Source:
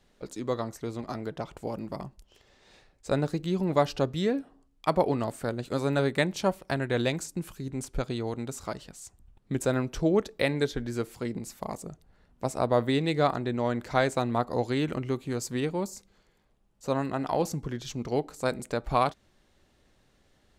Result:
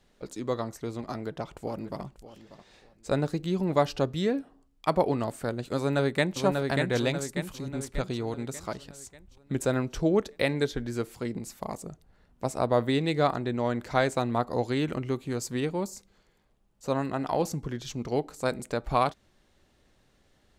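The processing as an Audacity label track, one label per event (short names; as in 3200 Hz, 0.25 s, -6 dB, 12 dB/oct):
1.040000	2.030000	echo throw 0.59 s, feedback 25%, level -15 dB
5.770000	6.400000	echo throw 0.59 s, feedback 50%, level -3.5 dB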